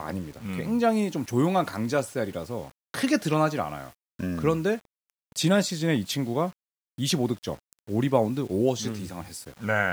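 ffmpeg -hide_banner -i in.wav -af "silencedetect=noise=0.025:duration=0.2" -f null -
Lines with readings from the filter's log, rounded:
silence_start: 2.66
silence_end: 2.94 | silence_duration: 0.28
silence_start: 3.88
silence_end: 4.20 | silence_duration: 0.31
silence_start: 4.77
silence_end: 5.36 | silence_duration: 0.59
silence_start: 6.50
silence_end: 6.98 | silence_duration: 0.49
silence_start: 7.55
silence_end: 7.89 | silence_duration: 0.34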